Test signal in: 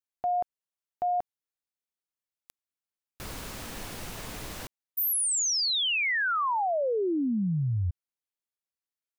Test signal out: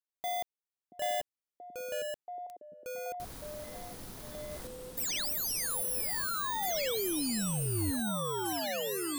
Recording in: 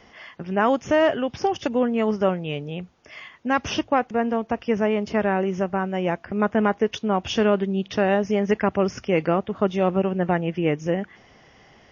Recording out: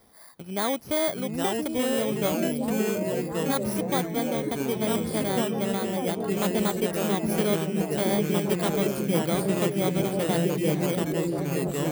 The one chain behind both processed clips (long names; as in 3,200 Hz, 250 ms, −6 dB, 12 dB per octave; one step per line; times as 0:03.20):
samples in bit-reversed order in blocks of 16 samples
on a send: echo through a band-pass that steps 680 ms, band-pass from 250 Hz, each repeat 0.7 octaves, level 0 dB
on the sum: delay with pitch and tempo change per echo 709 ms, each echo −3 semitones, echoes 2
level −7 dB